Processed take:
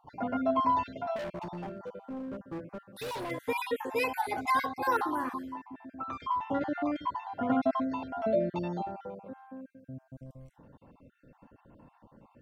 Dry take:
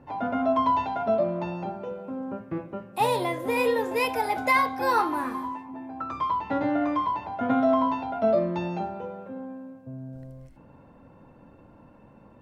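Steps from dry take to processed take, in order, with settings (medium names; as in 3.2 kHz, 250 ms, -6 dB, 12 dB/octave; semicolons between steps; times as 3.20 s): random holes in the spectrogram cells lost 35%; 1.16–3.31 s: hard clipper -31.5 dBFS, distortion -14 dB; trim -3.5 dB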